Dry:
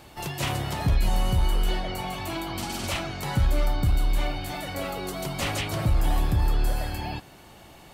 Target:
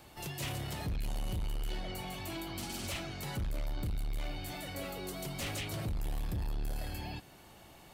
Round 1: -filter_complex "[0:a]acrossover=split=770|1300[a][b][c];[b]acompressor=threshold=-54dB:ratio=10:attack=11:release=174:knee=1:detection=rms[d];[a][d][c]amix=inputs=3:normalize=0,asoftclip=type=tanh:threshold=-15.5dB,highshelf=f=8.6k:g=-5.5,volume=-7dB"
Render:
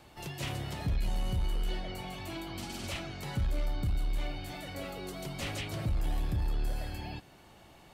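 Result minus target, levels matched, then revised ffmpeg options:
soft clip: distortion -12 dB; 8000 Hz band -5.0 dB
-filter_complex "[0:a]acrossover=split=770|1300[a][b][c];[b]acompressor=threshold=-54dB:ratio=10:attack=11:release=174:knee=1:detection=rms[d];[a][d][c]amix=inputs=3:normalize=0,asoftclip=type=tanh:threshold=-24.5dB,highshelf=f=8.6k:g=4,volume=-7dB"

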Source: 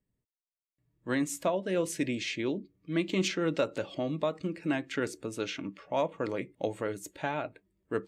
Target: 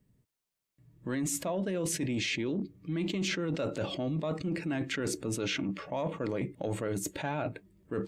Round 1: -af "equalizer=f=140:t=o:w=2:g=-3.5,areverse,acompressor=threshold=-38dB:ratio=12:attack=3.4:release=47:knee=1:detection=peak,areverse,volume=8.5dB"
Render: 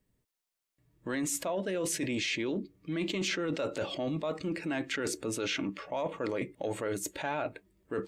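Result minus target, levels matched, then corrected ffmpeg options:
125 Hz band -5.5 dB
-af "equalizer=f=140:t=o:w=2:g=7.5,areverse,acompressor=threshold=-38dB:ratio=12:attack=3.4:release=47:knee=1:detection=peak,areverse,volume=8.5dB"

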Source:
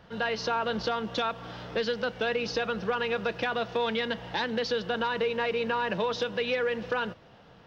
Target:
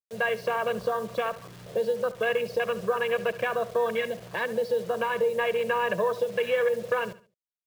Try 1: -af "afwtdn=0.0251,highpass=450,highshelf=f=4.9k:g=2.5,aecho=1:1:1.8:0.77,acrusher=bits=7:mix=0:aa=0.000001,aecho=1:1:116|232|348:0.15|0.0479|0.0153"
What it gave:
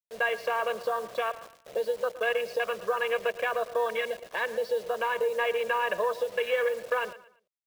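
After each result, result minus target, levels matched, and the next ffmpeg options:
125 Hz band -14.0 dB; echo 45 ms late
-af "afwtdn=0.0251,highpass=120,highshelf=f=4.9k:g=2.5,aecho=1:1:1.8:0.77,acrusher=bits=7:mix=0:aa=0.000001,aecho=1:1:116|232|348:0.15|0.0479|0.0153"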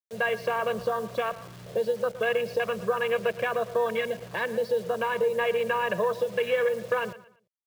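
echo 45 ms late
-af "afwtdn=0.0251,highpass=120,highshelf=f=4.9k:g=2.5,aecho=1:1:1.8:0.77,acrusher=bits=7:mix=0:aa=0.000001,aecho=1:1:71|142|213:0.15|0.0479|0.0153"

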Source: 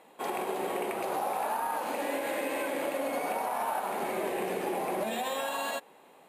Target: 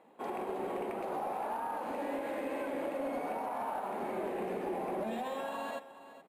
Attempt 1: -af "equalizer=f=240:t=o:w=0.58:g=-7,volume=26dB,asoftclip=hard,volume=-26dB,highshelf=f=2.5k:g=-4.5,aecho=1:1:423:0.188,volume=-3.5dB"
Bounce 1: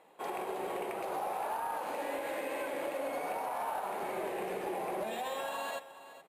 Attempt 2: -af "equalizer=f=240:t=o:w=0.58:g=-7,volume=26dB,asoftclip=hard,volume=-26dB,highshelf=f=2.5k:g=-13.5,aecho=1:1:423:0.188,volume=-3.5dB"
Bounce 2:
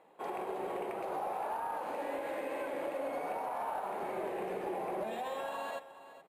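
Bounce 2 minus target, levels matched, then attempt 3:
250 Hz band -4.0 dB
-af "equalizer=f=240:t=o:w=0.58:g=4,volume=26dB,asoftclip=hard,volume=-26dB,highshelf=f=2.5k:g=-13.5,aecho=1:1:423:0.188,volume=-3.5dB"

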